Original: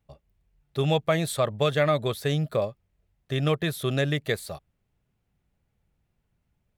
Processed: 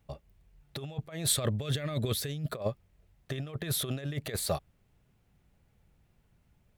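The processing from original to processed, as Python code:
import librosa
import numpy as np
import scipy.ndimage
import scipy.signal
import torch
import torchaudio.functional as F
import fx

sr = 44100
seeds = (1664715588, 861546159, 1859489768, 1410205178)

y = fx.peak_eq(x, sr, hz=860.0, db=-9.5, octaves=1.6, at=(1.33, 2.52))
y = fx.over_compress(y, sr, threshold_db=-31.0, ratio=-0.5)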